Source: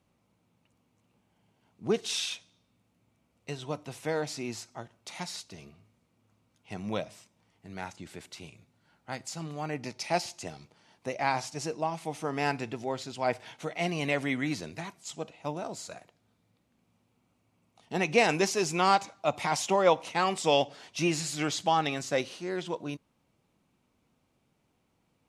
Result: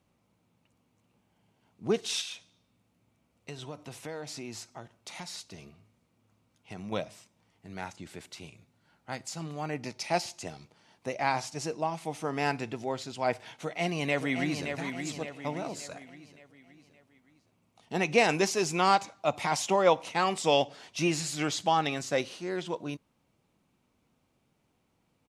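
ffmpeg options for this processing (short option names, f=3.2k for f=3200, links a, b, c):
-filter_complex "[0:a]asettb=1/sr,asplit=3[a][b][c];[a]atrim=end=2.214[d];[b]atrim=start=2.21:end=6.92,asetpts=PTS-STARTPTS,afade=t=in:d=0.004:c=qsin,afade=t=out:st=4.706:d=0.004:c=qsin,acompressor=threshold=-37dB:ratio=3:attack=3.2:release=140:knee=1:detection=peak[e];[c]atrim=start=6.916[f];[d][e]acrossfade=d=0.004:c1=hsin:c2=qsin[g];[g][f]acrossfade=d=0.004:c1=qsin:c2=hsin,asplit=2[h][i];[i]afade=t=in:st=13.6:d=0.01,afade=t=out:st=14.69:d=0.01,aecho=0:1:570|1140|1710|2280|2850:0.473151|0.212918|0.0958131|0.0431159|0.0194022[j];[h][j]amix=inputs=2:normalize=0"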